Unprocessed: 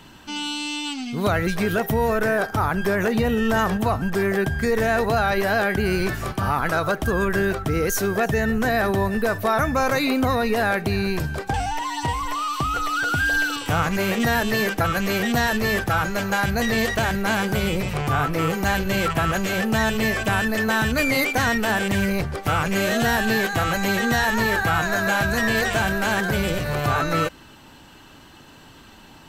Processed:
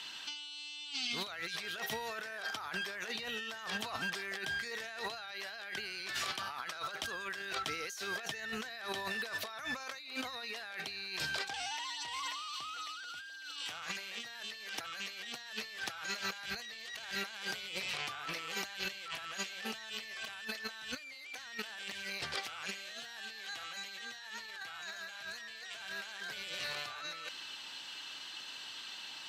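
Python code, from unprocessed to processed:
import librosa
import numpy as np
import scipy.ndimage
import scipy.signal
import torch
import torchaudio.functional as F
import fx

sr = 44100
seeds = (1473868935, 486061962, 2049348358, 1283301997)

y = fx.bandpass_q(x, sr, hz=3900.0, q=1.5)
y = fx.over_compress(y, sr, threshold_db=-44.0, ratio=-1.0)
y = y * 10.0 ** (1.0 / 20.0)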